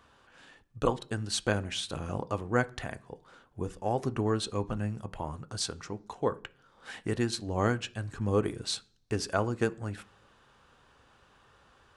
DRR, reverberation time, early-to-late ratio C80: 11.0 dB, 0.50 s, 26.5 dB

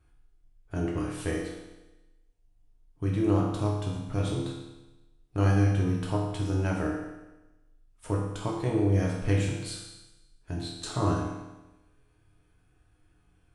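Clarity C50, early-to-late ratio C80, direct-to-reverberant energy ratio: 2.5 dB, 4.5 dB, -3.0 dB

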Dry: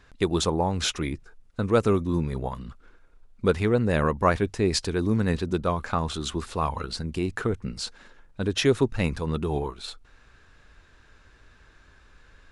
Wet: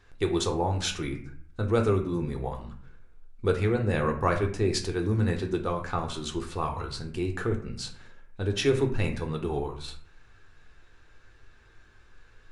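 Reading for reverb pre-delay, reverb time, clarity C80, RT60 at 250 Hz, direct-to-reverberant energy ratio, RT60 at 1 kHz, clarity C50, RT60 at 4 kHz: 3 ms, 0.55 s, 13.5 dB, 0.75 s, 2.5 dB, 0.55 s, 10.0 dB, 0.35 s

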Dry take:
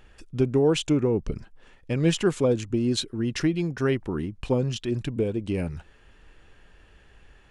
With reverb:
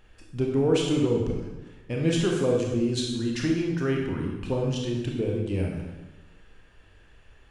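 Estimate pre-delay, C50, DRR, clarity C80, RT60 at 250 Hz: 21 ms, 2.5 dB, -1.0 dB, 4.5 dB, 1.2 s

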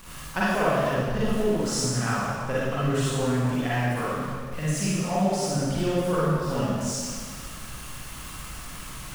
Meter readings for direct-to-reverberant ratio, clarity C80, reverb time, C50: -9.5 dB, -2.0 dB, 1.9 s, -5.5 dB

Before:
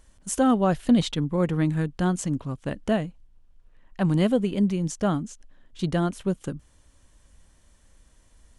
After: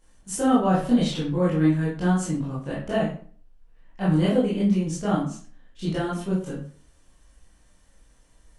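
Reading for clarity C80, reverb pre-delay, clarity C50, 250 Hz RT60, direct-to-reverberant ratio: 8.5 dB, 17 ms, 3.0 dB, 0.50 s, -9.5 dB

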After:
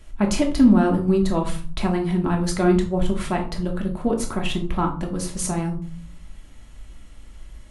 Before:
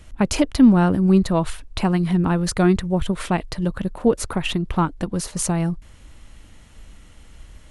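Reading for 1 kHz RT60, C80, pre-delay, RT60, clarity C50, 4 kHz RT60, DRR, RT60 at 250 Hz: 0.40 s, 14.5 dB, 3 ms, 0.40 s, 9.5 dB, 0.25 s, 1.0 dB, 0.70 s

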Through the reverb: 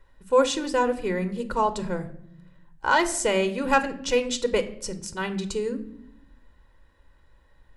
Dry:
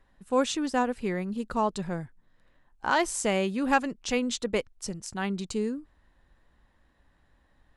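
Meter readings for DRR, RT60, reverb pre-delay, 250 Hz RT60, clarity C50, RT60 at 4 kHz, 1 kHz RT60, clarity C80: 9.5 dB, 0.70 s, 3 ms, 1.3 s, 14.5 dB, 0.50 s, 0.60 s, 17.0 dB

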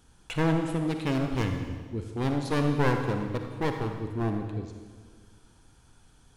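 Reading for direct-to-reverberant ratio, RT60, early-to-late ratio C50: 4.5 dB, 1.6 s, 5.0 dB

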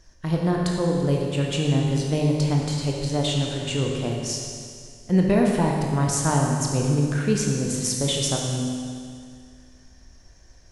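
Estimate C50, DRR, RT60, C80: 1.0 dB, -1.0 dB, 2.2 s, 2.5 dB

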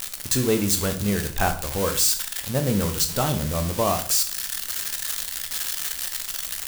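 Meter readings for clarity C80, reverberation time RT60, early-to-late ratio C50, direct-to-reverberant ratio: 15.5 dB, 0.50 s, 11.5 dB, 6.5 dB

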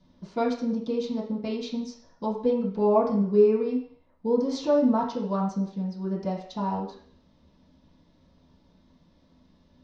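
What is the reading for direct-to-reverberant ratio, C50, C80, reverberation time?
-11.0 dB, 5.5 dB, 9.0 dB, 0.55 s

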